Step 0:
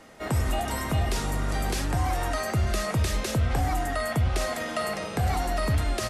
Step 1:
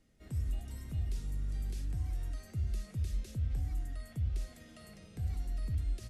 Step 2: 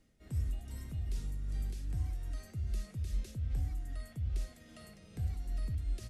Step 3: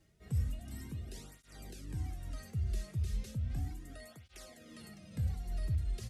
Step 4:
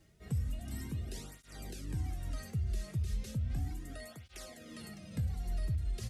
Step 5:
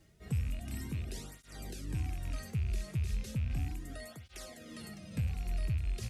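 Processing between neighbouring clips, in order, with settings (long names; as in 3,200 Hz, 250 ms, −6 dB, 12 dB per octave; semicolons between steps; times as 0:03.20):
guitar amp tone stack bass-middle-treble 10-0-1
amplitude tremolo 2.5 Hz, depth 39%; level +1 dB
through-zero flanger with one copy inverted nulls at 0.35 Hz, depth 4.2 ms; level +5 dB
downward compressor 4 to 1, threshold −35 dBFS, peak gain reduction 7 dB; level +4 dB
loose part that buzzes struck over −36 dBFS, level −41 dBFS; level +1 dB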